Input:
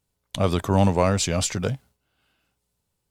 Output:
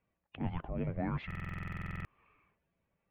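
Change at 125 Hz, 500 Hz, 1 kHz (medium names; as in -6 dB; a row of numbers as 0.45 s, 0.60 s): -14.0 dB, -21.0 dB, -17.5 dB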